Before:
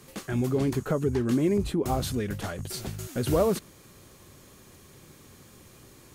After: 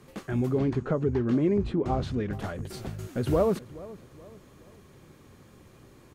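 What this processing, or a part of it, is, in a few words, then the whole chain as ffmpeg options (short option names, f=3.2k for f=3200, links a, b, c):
through cloth: -filter_complex "[0:a]asettb=1/sr,asplit=3[a][b][c];[a]atrim=end=0.594[d];[b]atrim=start=0.59:end=2.33,asetpts=PTS-STARTPTS,afade=t=in:d=0.004:c=qsin,afade=t=out:st=1.736:d=0.004:c=qsin,lowpass=5.2k[e];[c]atrim=start=2.326[f];[d][e]acrossfade=d=0.004:c1=hsin:c2=qsin[g];[g][f]acrossfade=d=0.004:c1=qsin:c2=hsin,highshelf=f=3.5k:g=-12.5,asplit=2[h][i];[i]adelay=425,lowpass=f=2.3k:p=1,volume=-18.5dB,asplit=2[j][k];[k]adelay=425,lowpass=f=2.3k:p=1,volume=0.41,asplit=2[l][m];[m]adelay=425,lowpass=f=2.3k:p=1,volume=0.41[n];[h][j][l][n]amix=inputs=4:normalize=0"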